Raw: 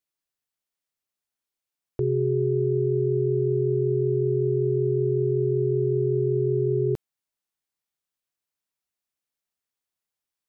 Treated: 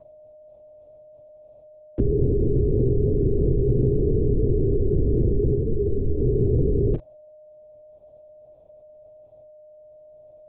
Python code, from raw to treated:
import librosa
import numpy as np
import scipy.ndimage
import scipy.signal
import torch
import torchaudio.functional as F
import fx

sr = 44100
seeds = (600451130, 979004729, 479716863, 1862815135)

y = fx.doubler(x, sr, ms=34.0, db=-11.0)
y = y + 10.0 ** (-47.0 / 20.0) * np.sin(2.0 * np.pi * 610.0 * np.arange(len(y)) / sr)
y = fx.low_shelf(y, sr, hz=290.0, db=9.5)
y = fx.lpc_vocoder(y, sr, seeds[0], excitation='whisper', order=8)
y = fx.graphic_eq_31(y, sr, hz=(125, 200, 400), db=(7, -6, -4))
y = fx.ensemble(y, sr, at=(5.55, 6.21), fade=0.02)